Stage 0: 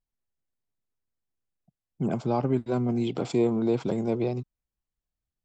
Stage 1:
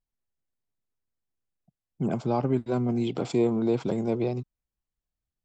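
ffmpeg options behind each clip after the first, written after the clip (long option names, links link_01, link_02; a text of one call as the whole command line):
ffmpeg -i in.wav -af anull out.wav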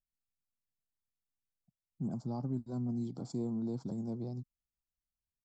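ffmpeg -i in.wav -af "firequalizer=gain_entry='entry(240,0);entry(400,-12);entry(840,-8);entry(2600,-30);entry(4500,-2)':delay=0.05:min_phase=1,volume=-8dB" out.wav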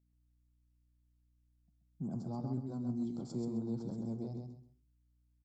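ffmpeg -i in.wav -af "flanger=delay=9.2:depth=9:regen=-78:speed=0.42:shape=triangular,aeval=exprs='val(0)+0.000178*(sin(2*PI*60*n/s)+sin(2*PI*2*60*n/s)/2+sin(2*PI*3*60*n/s)/3+sin(2*PI*4*60*n/s)/4+sin(2*PI*5*60*n/s)/5)':channel_layout=same,aecho=1:1:131|262|393:0.596|0.137|0.0315,volume=1.5dB" out.wav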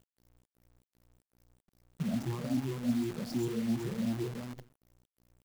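ffmpeg -i in.wav -af "afftfilt=real='re*pow(10,23/40*sin(2*PI*(0.68*log(max(b,1)*sr/1024/100)/log(2)-(2.6)*(pts-256)/sr)))':imag='im*pow(10,23/40*sin(2*PI*(0.68*log(max(b,1)*sr/1024/100)/log(2)-(2.6)*(pts-256)/sr)))':win_size=1024:overlap=0.75,acrusher=bits=8:dc=4:mix=0:aa=0.000001" out.wav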